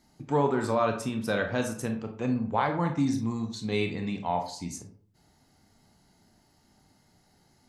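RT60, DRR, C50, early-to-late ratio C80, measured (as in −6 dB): 0.50 s, 4.0 dB, 8.5 dB, 12.5 dB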